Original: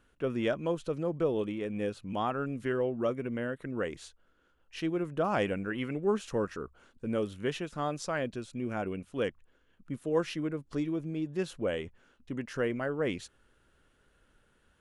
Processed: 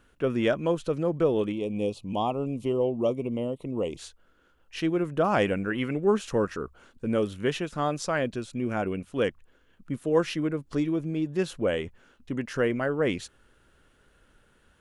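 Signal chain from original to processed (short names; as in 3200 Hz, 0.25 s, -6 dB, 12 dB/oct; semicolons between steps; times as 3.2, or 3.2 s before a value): 1.52–3.99 Chebyshev band-stop 950–2700 Hz, order 2; gain +5.5 dB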